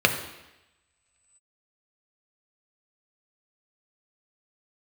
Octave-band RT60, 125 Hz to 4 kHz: 0.85, 0.90, 0.95, 1.0, 1.1, 1.0 s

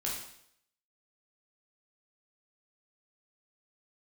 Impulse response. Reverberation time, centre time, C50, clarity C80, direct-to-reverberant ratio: 0.70 s, 46 ms, 3.0 dB, 6.5 dB, -4.5 dB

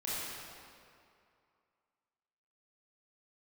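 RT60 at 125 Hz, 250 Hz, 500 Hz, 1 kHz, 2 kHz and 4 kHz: 2.2, 2.3, 2.4, 2.5, 2.1, 1.7 s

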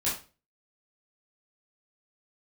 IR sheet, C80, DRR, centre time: 12.0 dB, -9.0 dB, 36 ms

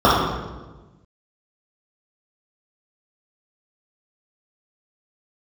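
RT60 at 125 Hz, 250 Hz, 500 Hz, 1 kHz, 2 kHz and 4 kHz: 1.6, 1.5, 1.3, 1.1, 1.0, 0.85 s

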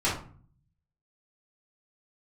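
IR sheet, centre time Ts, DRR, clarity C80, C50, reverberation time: 34 ms, -10.5 dB, 11.0 dB, 5.0 dB, 0.45 s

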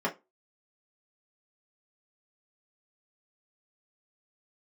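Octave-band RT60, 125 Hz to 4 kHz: 0.20, 0.25, 0.25, 0.20, 0.20, 0.15 s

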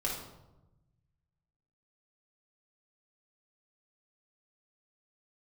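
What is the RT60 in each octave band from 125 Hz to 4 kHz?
1.9, 1.4, 1.1, 0.90, 0.65, 0.60 s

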